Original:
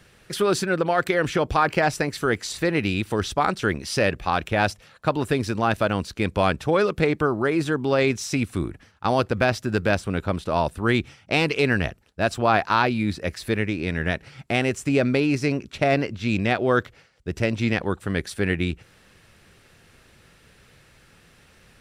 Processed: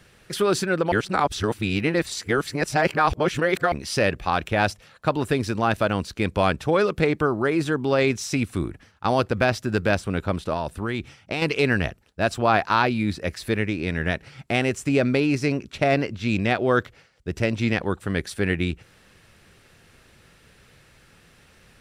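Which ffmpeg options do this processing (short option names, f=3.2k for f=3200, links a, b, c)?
-filter_complex "[0:a]asettb=1/sr,asplit=3[a][b][c];[a]atrim=end=10.534[d];[b]atrim=start=10.53:end=11.42,asetpts=PTS-STARTPTS,afade=t=in:d=0.004:c=qsin,afade=t=out:st=0.886:d=0.004:c=qsin,acompressor=threshold=-22dB:ratio=6:attack=3.2:release=140:knee=1:detection=peak[e];[c]atrim=start=11.416[f];[d][e]acrossfade=d=0.004:c1=hsin:c2=qsin[g];[g][f]acrossfade=d=0.004:c1=qsin:c2=hsin,asplit=3[h][i][j];[h]atrim=end=0.922[k];[i]atrim=start=0.918:end=3.722,asetpts=PTS-STARTPTS,areverse[l];[j]atrim=start=3.718[m];[k][l]acrossfade=d=0.004:c1=hsin:c2=hsin[n];[n][m]acrossfade=d=0.004:c1=hsin:c2=hsin"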